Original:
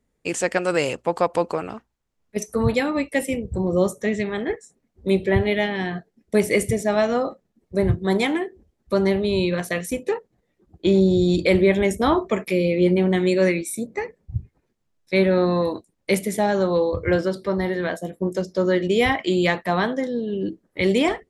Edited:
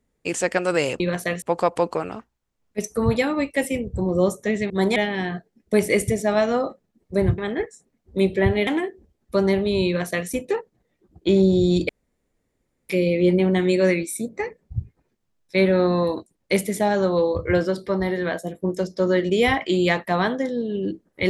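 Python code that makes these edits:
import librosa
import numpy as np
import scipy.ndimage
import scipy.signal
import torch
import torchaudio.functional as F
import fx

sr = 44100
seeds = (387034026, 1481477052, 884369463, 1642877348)

y = fx.edit(x, sr, fx.swap(start_s=4.28, length_s=1.29, other_s=7.99, other_length_s=0.26),
    fx.duplicate(start_s=9.45, length_s=0.42, to_s=1.0),
    fx.room_tone_fill(start_s=11.47, length_s=1.0), tone=tone)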